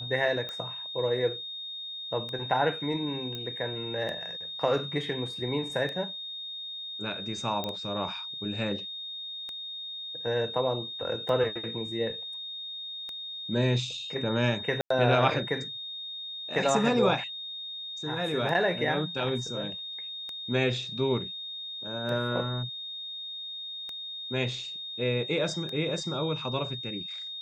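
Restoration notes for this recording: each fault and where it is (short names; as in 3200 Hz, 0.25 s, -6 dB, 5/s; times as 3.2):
tick 33 1/3 rpm -23 dBFS
tone 3700 Hz -36 dBFS
3.35 pop -22 dBFS
7.64 pop -18 dBFS
14.81–14.9 gap 94 ms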